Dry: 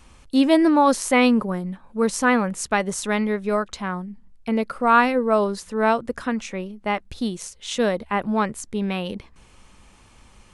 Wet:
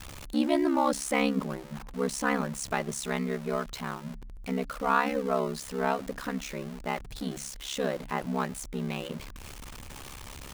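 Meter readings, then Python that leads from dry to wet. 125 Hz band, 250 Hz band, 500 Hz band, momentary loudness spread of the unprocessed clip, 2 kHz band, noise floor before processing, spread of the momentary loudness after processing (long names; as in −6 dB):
−4.0 dB, −9.5 dB, −8.5 dB, 13 LU, −9.0 dB, −52 dBFS, 17 LU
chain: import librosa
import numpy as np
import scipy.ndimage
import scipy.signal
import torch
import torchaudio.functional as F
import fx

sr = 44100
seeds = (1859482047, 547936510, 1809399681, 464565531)

y = x + 0.5 * 10.0 ** (-28.0 / 20.0) * np.sign(x)
y = fx.hum_notches(y, sr, base_hz=60, count=4)
y = y * np.sin(2.0 * np.pi * 34.0 * np.arange(len(y)) / sr)
y = F.gain(torch.from_numpy(y), -7.0).numpy()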